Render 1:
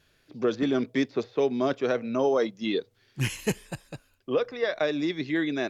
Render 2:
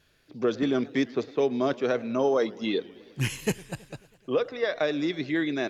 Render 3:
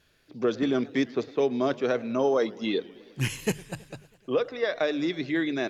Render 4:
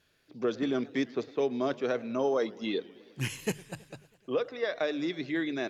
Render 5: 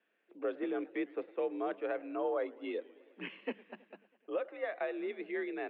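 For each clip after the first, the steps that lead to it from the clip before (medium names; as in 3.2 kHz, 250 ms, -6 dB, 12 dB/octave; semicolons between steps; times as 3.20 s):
modulated delay 107 ms, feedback 71%, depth 186 cents, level -22 dB
hum notches 50/100/150 Hz
bass shelf 61 Hz -8.5 dB; trim -4 dB
mistuned SSB +51 Hz 190–2800 Hz; trim -6 dB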